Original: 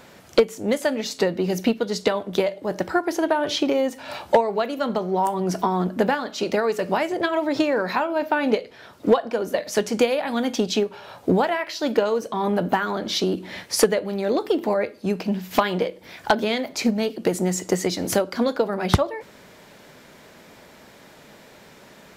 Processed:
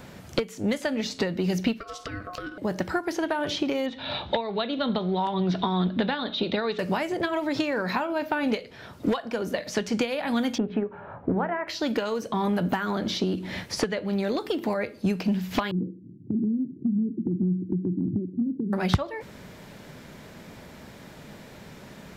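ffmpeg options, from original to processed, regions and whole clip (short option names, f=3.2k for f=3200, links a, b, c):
-filter_complex "[0:a]asettb=1/sr,asplit=3[a][b][c];[a]atrim=end=1.804[d];[b]atrim=start=1.8:end=2.58,asetpts=PTS-STARTPTS,afade=t=in:d=0.004:c=qsin,afade=t=out:st=0.776:d=0.004:c=qsin,acompressor=threshold=-30dB:ratio=10:attack=3.2:release=140:knee=1:detection=peak,aeval=exprs='val(0)*sin(2*PI*900*n/s)':c=same[e];[c]atrim=start=2.576[f];[d][e]acrossfade=d=0.004:c1=hsin:c2=qsin[g];[g][f]acrossfade=d=0.004:c1=qsin:c2=hsin,asettb=1/sr,asplit=3[h][i][j];[h]atrim=end=3.864[k];[i]atrim=start=3.86:end=6.79,asetpts=PTS-STARTPTS,afade=t=in:d=0.004:c=qsin,afade=t=out:st=2.926:d=0.004:c=qsin,lowpass=f=3.7k:t=q:w=13,aemphasis=mode=reproduction:type=75kf[l];[j]atrim=start=6.786[m];[k][l]acrossfade=d=0.004:c1=hsin:c2=qsin[n];[n][m]acrossfade=d=0.004:c1=qsin:c2=hsin,asettb=1/sr,asplit=3[o][p][q];[o]atrim=end=10.584[r];[p]atrim=start=10.58:end=11.68,asetpts=PTS-STARTPTS,afade=t=in:d=0.004:c=qsin,afade=t=out:st=1.096:d=0.004:c=qsin,lowpass=f=1.7k:w=0.5412,lowpass=f=1.7k:w=1.3066,bandreject=f=60:t=h:w=6,bandreject=f=120:t=h:w=6,bandreject=f=180:t=h:w=6,bandreject=f=240:t=h:w=6,bandreject=f=300:t=h:w=6,bandreject=f=360:t=h:w=6,bandreject=f=420:t=h:w=6,bandreject=f=480:t=h:w=6[s];[q]atrim=start=11.676[t];[r][s]acrossfade=d=0.004:c1=hsin:c2=qsin[u];[u][t]acrossfade=d=0.004:c1=qsin:c2=hsin,asettb=1/sr,asplit=3[v][w][x];[v]atrim=end=15.714[y];[w]atrim=start=15.71:end=18.73,asetpts=PTS-STARTPTS,afade=t=in:d=0.004:c=qsin,afade=t=out:st=3.016:d=0.004:c=qsin,asuperpass=centerf=190:order=12:qfactor=0.75,acompressor=threshold=-25dB:ratio=3:attack=3.2:release=140:knee=1:detection=peak[z];[x]atrim=start=18.726[aa];[y][z]acrossfade=d=0.004:c1=hsin:c2=qsin[ab];[ab][aa]acrossfade=d=0.004:c1=qsin:c2=hsin,acrossover=split=1200|6100[ac][ad][ae];[ac]acompressor=threshold=-28dB:ratio=4[af];[ad]acompressor=threshold=-30dB:ratio=4[ag];[ae]acompressor=threshold=-50dB:ratio=4[ah];[af][ag][ah]amix=inputs=3:normalize=0,bass=f=250:g=10,treble=f=4k:g=-1"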